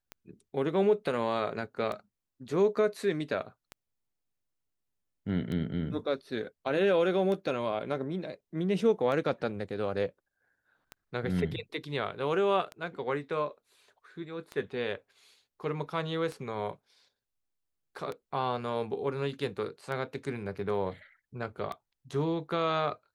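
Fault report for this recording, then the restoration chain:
scratch tick 33 1/3 rpm −24 dBFS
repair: click removal

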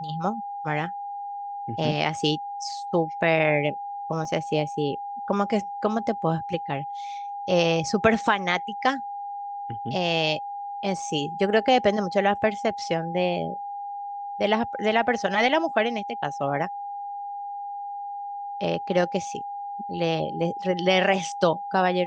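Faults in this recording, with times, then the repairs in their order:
whistle 810 Hz −31 dBFS
0:04.25: drop-out 3.2 ms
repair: notch filter 810 Hz, Q 30
repair the gap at 0:04.25, 3.2 ms

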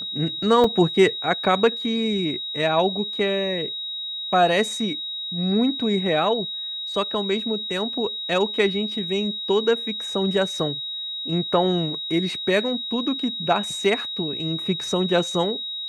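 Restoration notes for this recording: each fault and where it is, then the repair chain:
whistle 3,800 Hz −28 dBFS
0:00.64: drop-out 3.3 ms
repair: notch filter 3,800 Hz, Q 30
repair the gap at 0:00.64, 3.3 ms

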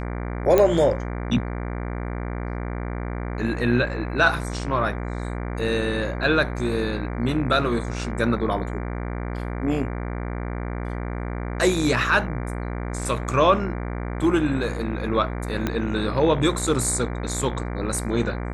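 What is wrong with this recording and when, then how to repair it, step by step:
mains buzz 60 Hz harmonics 39 −29 dBFS
0:00.58: click −6 dBFS
0:15.67: click −10 dBFS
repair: click removal
hum removal 60 Hz, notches 39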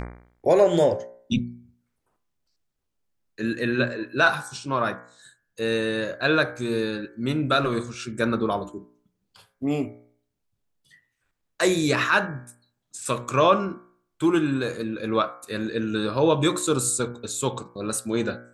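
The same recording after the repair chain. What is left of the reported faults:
0:15.67: click

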